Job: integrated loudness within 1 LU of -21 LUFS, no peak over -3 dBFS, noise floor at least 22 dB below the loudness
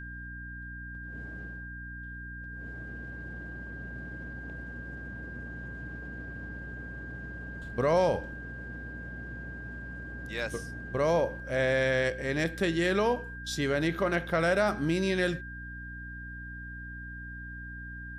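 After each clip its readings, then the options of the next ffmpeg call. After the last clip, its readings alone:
hum 60 Hz; harmonics up to 300 Hz; hum level -41 dBFS; steady tone 1600 Hz; tone level -42 dBFS; loudness -33.0 LUFS; peak -14.0 dBFS; loudness target -21.0 LUFS
-> -af "bandreject=f=60:t=h:w=4,bandreject=f=120:t=h:w=4,bandreject=f=180:t=h:w=4,bandreject=f=240:t=h:w=4,bandreject=f=300:t=h:w=4"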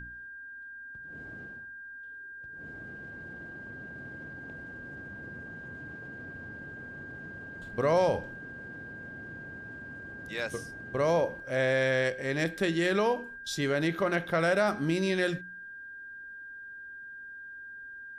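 hum none; steady tone 1600 Hz; tone level -42 dBFS
-> -af "bandreject=f=1.6k:w=30"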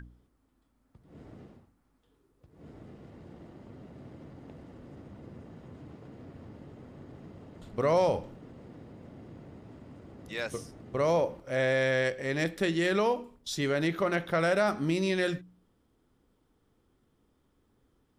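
steady tone none; loudness -29.0 LUFS; peak -14.5 dBFS; loudness target -21.0 LUFS
-> -af "volume=8dB"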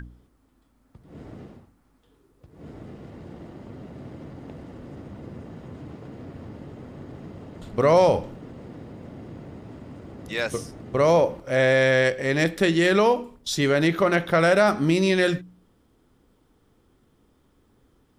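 loudness -21.0 LUFS; peak -6.5 dBFS; noise floor -63 dBFS

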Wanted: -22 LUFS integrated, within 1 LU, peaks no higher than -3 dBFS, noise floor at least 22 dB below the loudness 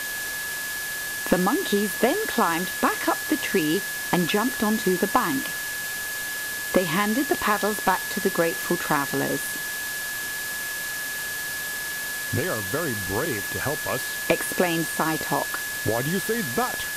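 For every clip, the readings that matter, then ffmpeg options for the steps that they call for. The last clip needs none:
steady tone 1700 Hz; tone level -30 dBFS; noise floor -31 dBFS; noise floor target -47 dBFS; loudness -24.5 LUFS; peak -7.0 dBFS; loudness target -22.0 LUFS
-> -af "bandreject=f=1.7k:w=30"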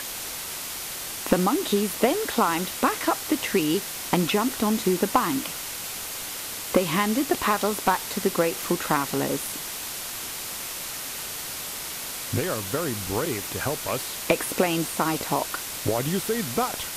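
steady tone none; noise floor -34 dBFS; noise floor target -48 dBFS
-> -af "afftdn=nr=14:nf=-34"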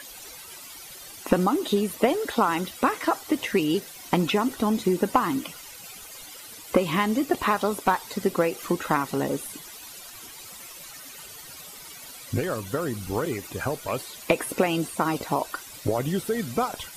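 noise floor -43 dBFS; noise floor target -48 dBFS
-> -af "afftdn=nr=6:nf=-43"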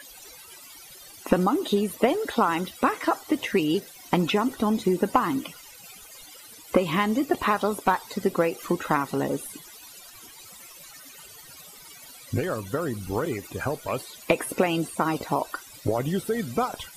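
noise floor -47 dBFS; noise floor target -48 dBFS
-> -af "afftdn=nr=6:nf=-47"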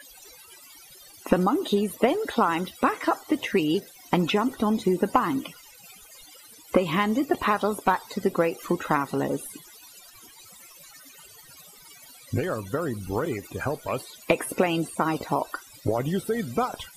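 noise floor -50 dBFS; loudness -26.0 LUFS; peak -8.0 dBFS; loudness target -22.0 LUFS
-> -af "volume=4dB"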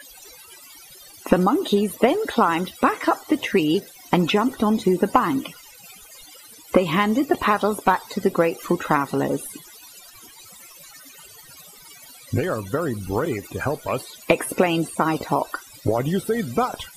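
loudness -22.0 LUFS; peak -4.0 dBFS; noise floor -46 dBFS

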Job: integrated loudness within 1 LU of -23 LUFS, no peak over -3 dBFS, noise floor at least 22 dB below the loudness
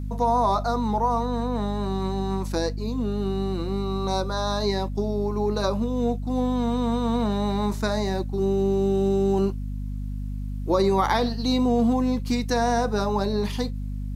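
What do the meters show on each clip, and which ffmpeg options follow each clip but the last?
hum 50 Hz; harmonics up to 250 Hz; hum level -27 dBFS; loudness -25.0 LUFS; peak -9.0 dBFS; loudness target -23.0 LUFS
-> -af "bandreject=f=50:t=h:w=4,bandreject=f=100:t=h:w=4,bandreject=f=150:t=h:w=4,bandreject=f=200:t=h:w=4,bandreject=f=250:t=h:w=4"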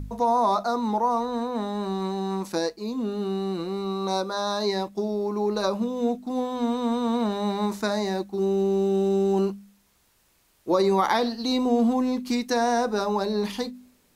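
hum none; loudness -25.5 LUFS; peak -10.0 dBFS; loudness target -23.0 LUFS
-> -af "volume=2.5dB"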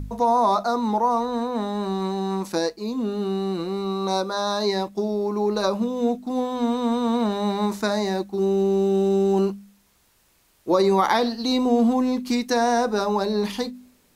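loudness -23.0 LUFS; peak -7.5 dBFS; noise floor -62 dBFS

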